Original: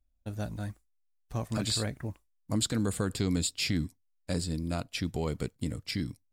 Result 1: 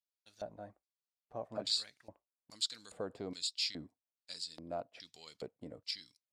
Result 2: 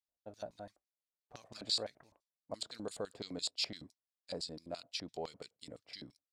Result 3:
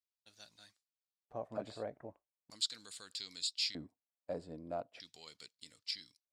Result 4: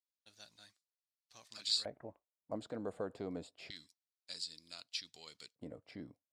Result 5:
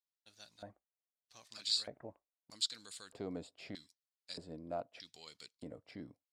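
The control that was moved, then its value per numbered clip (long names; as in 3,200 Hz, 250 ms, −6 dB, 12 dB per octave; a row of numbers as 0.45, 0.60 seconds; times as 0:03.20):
auto-filter band-pass, speed: 1.2, 5.9, 0.4, 0.27, 0.8 Hertz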